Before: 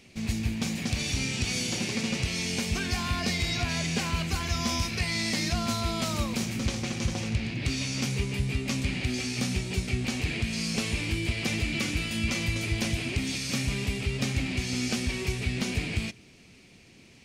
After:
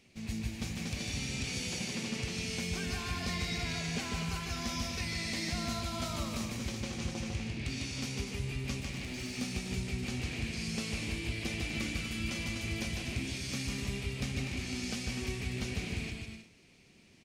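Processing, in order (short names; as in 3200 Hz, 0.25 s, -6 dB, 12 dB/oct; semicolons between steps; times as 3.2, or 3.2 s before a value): 8.8–9.34 overloaded stage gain 28.5 dB; bouncing-ball echo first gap 0.15 s, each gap 0.65×, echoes 5; gain -9 dB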